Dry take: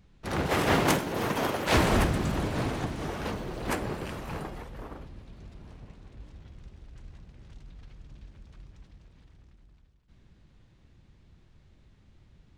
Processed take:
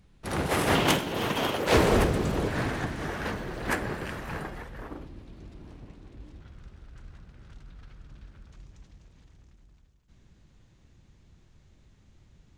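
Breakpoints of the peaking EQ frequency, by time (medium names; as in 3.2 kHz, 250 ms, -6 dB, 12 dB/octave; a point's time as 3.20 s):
peaking EQ +8 dB 0.56 oct
10 kHz
from 0.75 s 3.1 kHz
from 1.58 s 450 Hz
from 2.48 s 1.7 kHz
from 4.89 s 310 Hz
from 6.41 s 1.4 kHz
from 8.52 s 6.7 kHz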